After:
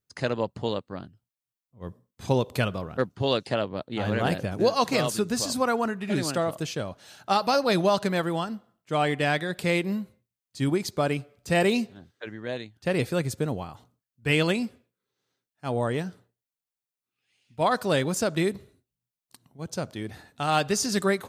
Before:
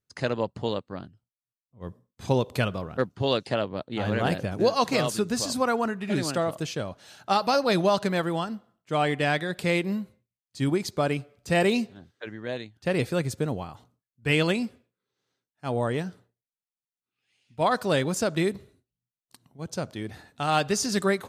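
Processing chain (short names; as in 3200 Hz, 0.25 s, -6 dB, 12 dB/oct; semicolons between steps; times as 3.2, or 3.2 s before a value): high shelf 12000 Hz +5 dB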